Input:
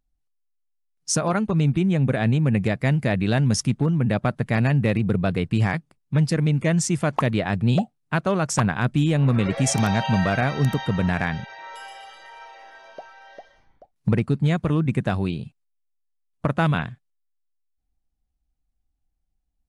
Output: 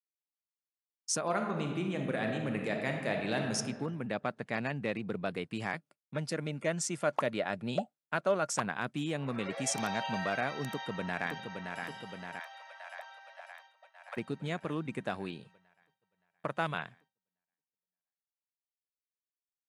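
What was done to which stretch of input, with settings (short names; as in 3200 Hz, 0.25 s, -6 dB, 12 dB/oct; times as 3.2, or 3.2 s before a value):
1.25–3.55 reverb throw, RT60 1.4 s, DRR 2 dB
4.09–5.26 LPF 7600 Hz
5.77–8.58 small resonant body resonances 590/1400 Hz, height 8 dB
10.68–11.8 echo throw 0.57 s, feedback 70%, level -5.5 dB
12.39–14.17 steep high-pass 560 Hz 96 dB/oct
15.4–16.9 bell 250 Hz -9.5 dB 0.37 oct
whole clip: expander -43 dBFS; Bessel high-pass 330 Hz, order 2; gain -8.5 dB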